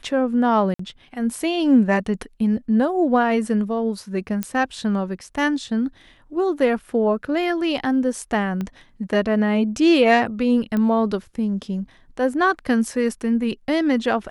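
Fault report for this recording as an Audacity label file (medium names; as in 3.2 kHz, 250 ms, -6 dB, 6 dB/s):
0.740000	0.790000	dropout 54 ms
4.430000	4.430000	pop -9 dBFS
8.610000	8.610000	pop -16 dBFS
10.770000	10.770000	pop -14 dBFS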